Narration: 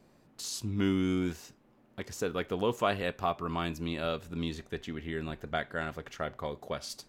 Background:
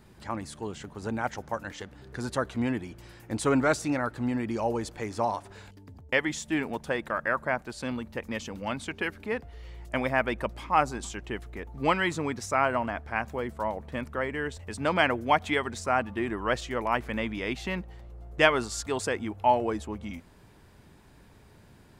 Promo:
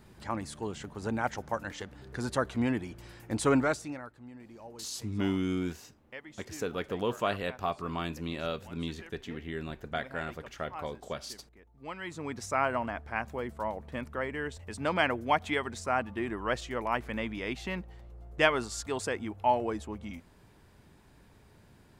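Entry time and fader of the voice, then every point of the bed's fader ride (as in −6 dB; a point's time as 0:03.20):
4.40 s, −1.5 dB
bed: 0:03.55 −0.5 dB
0:04.21 −19.5 dB
0:11.80 −19.5 dB
0:12.39 −3.5 dB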